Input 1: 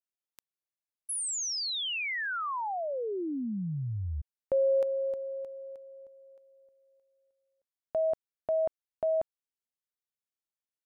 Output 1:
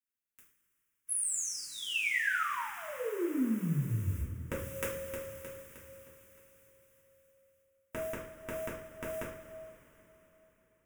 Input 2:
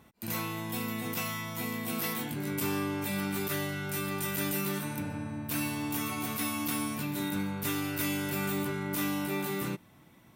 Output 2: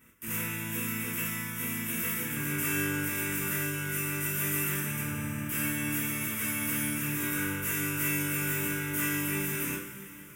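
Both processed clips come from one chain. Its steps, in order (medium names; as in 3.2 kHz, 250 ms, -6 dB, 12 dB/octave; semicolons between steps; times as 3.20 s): spectral contrast reduction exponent 0.53; static phaser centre 1.8 kHz, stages 4; two-slope reverb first 0.43 s, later 4.1 s, from -18 dB, DRR -7 dB; trim -4.5 dB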